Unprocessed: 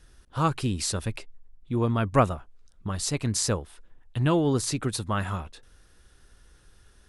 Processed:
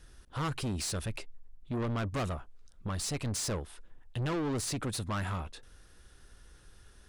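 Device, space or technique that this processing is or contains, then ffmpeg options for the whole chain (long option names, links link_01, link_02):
saturation between pre-emphasis and de-emphasis: -af "highshelf=frequency=10000:gain=7.5,asoftclip=type=tanh:threshold=-30dB,highshelf=frequency=10000:gain=-7.5"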